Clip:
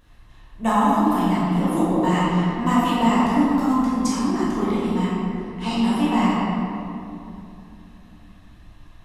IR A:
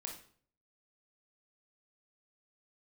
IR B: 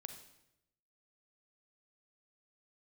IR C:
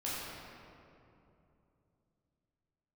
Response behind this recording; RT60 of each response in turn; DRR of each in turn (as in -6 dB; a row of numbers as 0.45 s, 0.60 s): C; 0.50 s, 0.85 s, 2.9 s; 0.5 dB, 6.5 dB, -8.5 dB